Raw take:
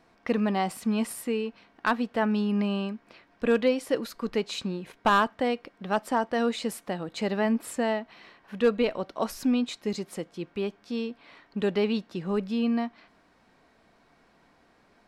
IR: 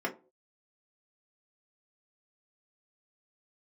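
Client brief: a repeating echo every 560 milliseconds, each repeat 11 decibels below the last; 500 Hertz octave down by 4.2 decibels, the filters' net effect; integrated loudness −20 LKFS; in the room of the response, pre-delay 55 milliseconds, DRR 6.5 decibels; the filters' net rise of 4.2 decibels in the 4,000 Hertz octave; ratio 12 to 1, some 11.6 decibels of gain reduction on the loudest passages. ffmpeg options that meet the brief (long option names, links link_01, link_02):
-filter_complex "[0:a]equalizer=frequency=500:width_type=o:gain=-5,equalizer=frequency=4000:width_type=o:gain=5.5,acompressor=threshold=-31dB:ratio=12,aecho=1:1:560|1120|1680:0.282|0.0789|0.0221,asplit=2[link_01][link_02];[1:a]atrim=start_sample=2205,adelay=55[link_03];[link_02][link_03]afir=irnorm=-1:irlink=0,volume=-13.5dB[link_04];[link_01][link_04]amix=inputs=2:normalize=0,volume=15.5dB"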